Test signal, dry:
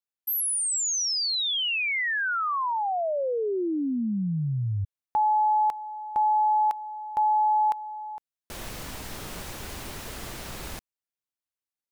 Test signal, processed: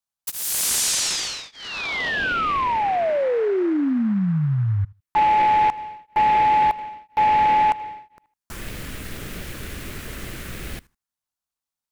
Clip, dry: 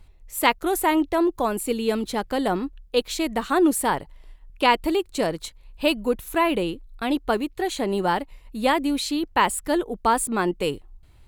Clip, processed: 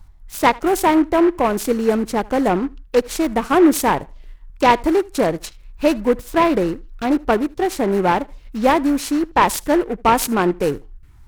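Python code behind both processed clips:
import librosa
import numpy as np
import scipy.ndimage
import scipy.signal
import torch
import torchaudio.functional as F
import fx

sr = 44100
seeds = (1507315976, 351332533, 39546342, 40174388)

y = fx.echo_feedback(x, sr, ms=78, feedback_pct=18, wet_db=-23.5)
y = fx.env_phaser(y, sr, low_hz=400.0, high_hz=3400.0, full_db=-25.0)
y = fx.noise_mod_delay(y, sr, seeds[0], noise_hz=1200.0, depth_ms=0.041)
y = y * 10.0 ** (6.5 / 20.0)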